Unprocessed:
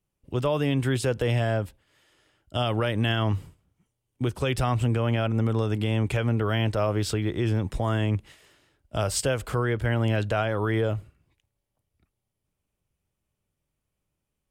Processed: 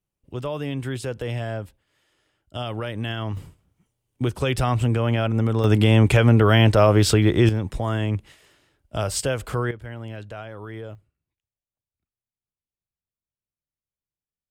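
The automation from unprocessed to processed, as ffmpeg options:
-af "asetnsamples=n=441:p=0,asendcmd='3.37 volume volume 3dB;5.64 volume volume 9.5dB;7.49 volume volume 1dB;9.71 volume volume -11dB;10.95 volume volume -18dB',volume=-4dB"

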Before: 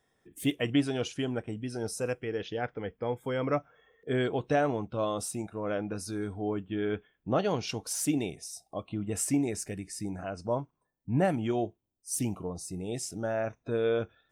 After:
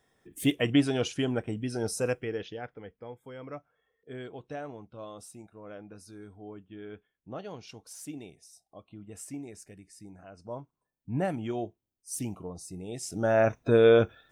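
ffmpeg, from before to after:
-af "volume=24.5dB,afade=t=out:st=2.1:d=0.49:silence=0.334965,afade=t=out:st=2.59:d=0.58:silence=0.501187,afade=t=in:st=10.28:d=0.85:silence=0.354813,afade=t=in:st=13:d=0.43:silence=0.237137"

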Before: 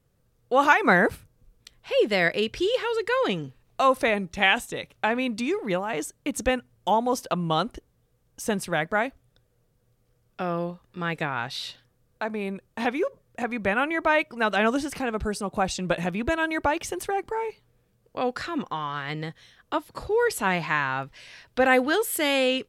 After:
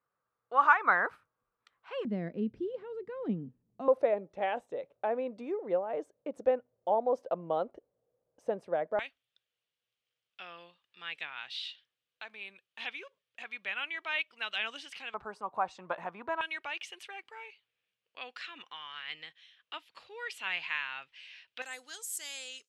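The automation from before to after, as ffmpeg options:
-af "asetnsamples=n=441:p=0,asendcmd='2.05 bandpass f 220;3.88 bandpass f 560;8.99 bandpass f 3000;15.14 bandpass f 1000;16.41 bandpass f 2800;21.62 bandpass f 6900',bandpass=f=1.2k:t=q:w=3:csg=0"

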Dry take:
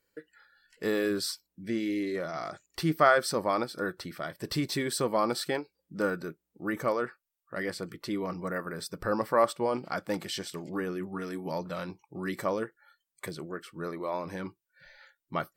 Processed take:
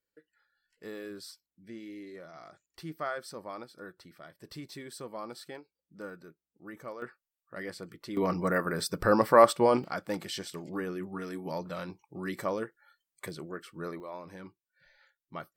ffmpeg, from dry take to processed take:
-af "asetnsamples=n=441:p=0,asendcmd='7.02 volume volume -6dB;8.17 volume volume 5.5dB;9.84 volume volume -2dB;14 volume volume -9dB',volume=-13.5dB"

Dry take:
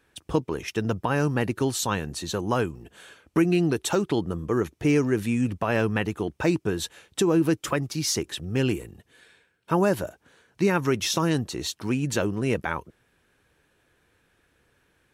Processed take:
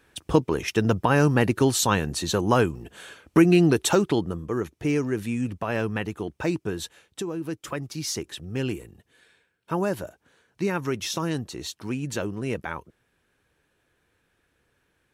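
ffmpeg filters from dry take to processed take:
-af "volume=12dB,afade=t=out:st=3.86:d=0.59:silence=0.421697,afade=t=out:st=6.8:d=0.56:silence=0.375837,afade=t=in:st=7.36:d=0.57:silence=0.421697"

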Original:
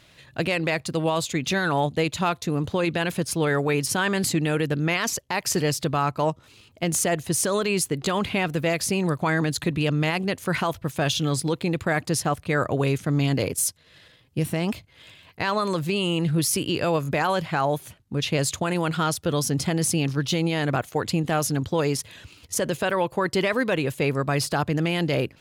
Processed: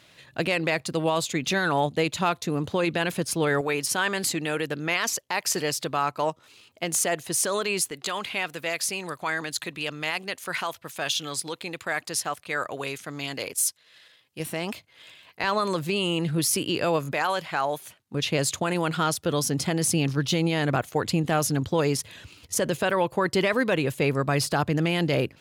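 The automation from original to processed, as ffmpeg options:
-af "asetnsamples=n=441:p=0,asendcmd='3.61 highpass f 500;7.91 highpass f 1200;14.4 highpass f 500;15.44 highpass f 200;17.12 highpass f 670;18.14 highpass f 160;19.87 highpass f 54',highpass=f=170:p=1"

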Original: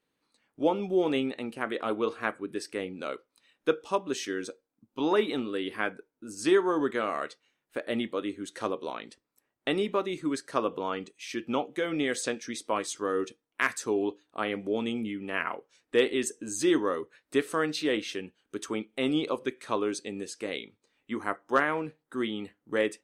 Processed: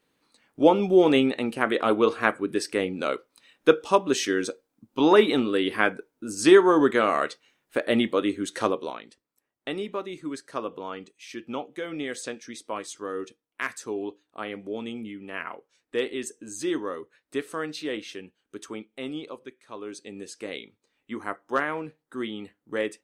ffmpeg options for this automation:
-af "volume=20.5dB,afade=t=out:st=8.59:d=0.44:silence=0.266073,afade=t=out:st=18.61:d=1.06:silence=0.316228,afade=t=in:st=19.67:d=0.66:silence=0.237137"

